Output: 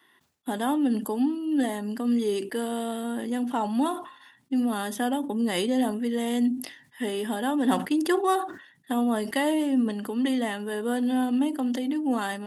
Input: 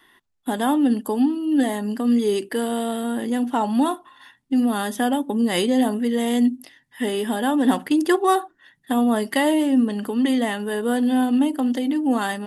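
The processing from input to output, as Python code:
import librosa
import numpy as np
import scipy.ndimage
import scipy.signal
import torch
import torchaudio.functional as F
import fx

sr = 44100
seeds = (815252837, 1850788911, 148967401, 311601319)

y = scipy.signal.sosfilt(scipy.signal.butter(2, 110.0, 'highpass', fs=sr, output='sos'), x)
y = fx.sustainer(y, sr, db_per_s=98.0)
y = F.gain(torch.from_numpy(y), -5.5).numpy()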